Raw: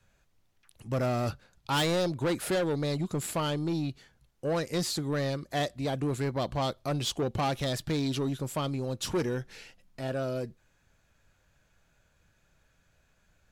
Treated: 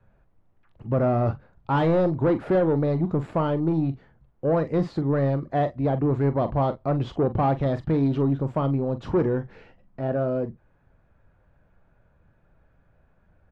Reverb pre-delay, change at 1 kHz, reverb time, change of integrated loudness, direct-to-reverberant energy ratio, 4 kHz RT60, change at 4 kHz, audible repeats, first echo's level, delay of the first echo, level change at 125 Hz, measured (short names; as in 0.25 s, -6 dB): none, +6.5 dB, none, +6.5 dB, none, none, -12.5 dB, 1, -11.5 dB, 43 ms, +8.0 dB